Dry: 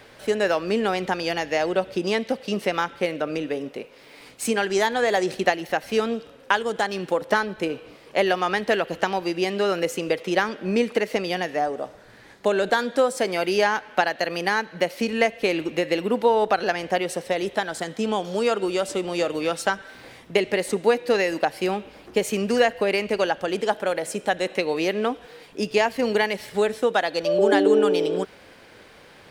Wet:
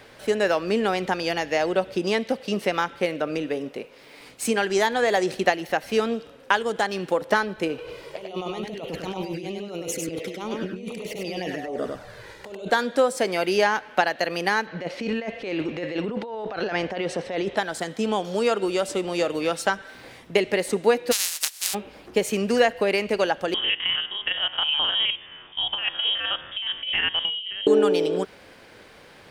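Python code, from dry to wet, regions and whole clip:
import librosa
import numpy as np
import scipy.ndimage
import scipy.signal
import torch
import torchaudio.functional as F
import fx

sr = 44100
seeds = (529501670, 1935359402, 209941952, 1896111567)

y = fx.chain(x, sr, fx.env_flanger(rest_ms=2.4, full_db=-20.5),
    fx.over_compress(threshold_db=-34.0, ratio=-1.0),
    fx.echo_single(ms=99, db=-3.5), at=(7.78, 12.68))
y = fx.chain(y, sr, fx.air_absorb(metres=110.0),
    fx.over_compress(threshold_db=-28.0, ratio=-1.0), at=(14.67, 17.57))
y = fx.spec_flatten(y, sr, power=0.16, at=(21.11, 21.73), fade=0.02)
y = fx.bandpass_q(y, sr, hz=7300.0, q=0.61, at=(21.11, 21.73), fade=0.02)
y = fx.chain(y, sr, fx.spec_steps(hold_ms=50),
    fx.freq_invert(carrier_hz=3500),
    fx.over_compress(threshold_db=-24.0, ratio=-0.5), at=(23.54, 27.67))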